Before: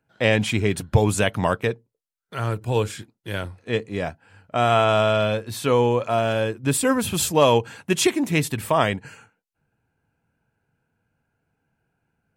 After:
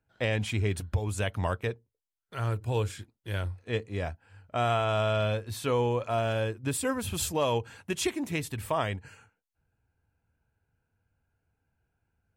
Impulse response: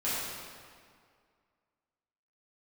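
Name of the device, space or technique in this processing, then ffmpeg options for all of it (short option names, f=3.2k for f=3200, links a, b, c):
car stereo with a boomy subwoofer: -af "lowshelf=f=110:t=q:w=1.5:g=9,alimiter=limit=-10.5dB:level=0:latency=1:release=500,volume=-7dB"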